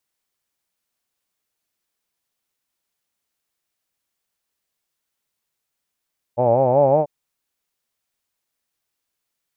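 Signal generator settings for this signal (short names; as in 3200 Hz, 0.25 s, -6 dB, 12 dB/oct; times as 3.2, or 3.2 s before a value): formant-synthesis vowel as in hawed, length 0.69 s, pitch 116 Hz, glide +4.5 st, vibrato depth 1.15 st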